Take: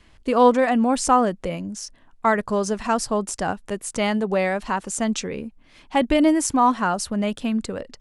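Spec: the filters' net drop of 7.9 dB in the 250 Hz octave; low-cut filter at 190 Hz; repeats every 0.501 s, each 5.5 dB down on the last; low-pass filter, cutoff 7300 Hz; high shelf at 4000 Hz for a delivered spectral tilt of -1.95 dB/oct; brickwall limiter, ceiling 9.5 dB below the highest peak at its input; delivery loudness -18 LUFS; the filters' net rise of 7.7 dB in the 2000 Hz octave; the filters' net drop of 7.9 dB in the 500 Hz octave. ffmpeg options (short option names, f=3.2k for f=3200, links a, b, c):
-af "highpass=190,lowpass=7.3k,equalizer=f=250:t=o:g=-5.5,equalizer=f=500:t=o:g=-9,equalizer=f=2k:t=o:g=8.5,highshelf=f=4k:g=6.5,alimiter=limit=-14.5dB:level=0:latency=1,aecho=1:1:501|1002|1503|2004|2505|3006|3507:0.531|0.281|0.149|0.079|0.0419|0.0222|0.0118,volume=7dB"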